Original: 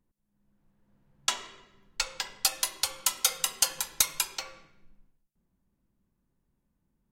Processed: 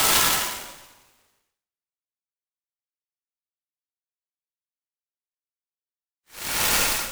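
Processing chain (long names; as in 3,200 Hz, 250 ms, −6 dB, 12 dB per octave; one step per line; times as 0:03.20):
transient designer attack +2 dB, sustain −3 dB
dead-zone distortion −38.5 dBFS
extreme stretch with random phases 9.2×, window 0.10 s, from 0:01.27
short delay modulated by noise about 4,100 Hz, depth 0.068 ms
level +5.5 dB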